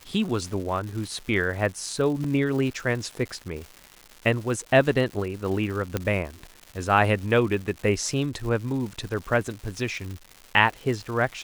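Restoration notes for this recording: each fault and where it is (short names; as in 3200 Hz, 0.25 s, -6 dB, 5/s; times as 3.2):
crackle 320/s -34 dBFS
2.24 gap 3.1 ms
5.97 pop -11 dBFS
10.11 pop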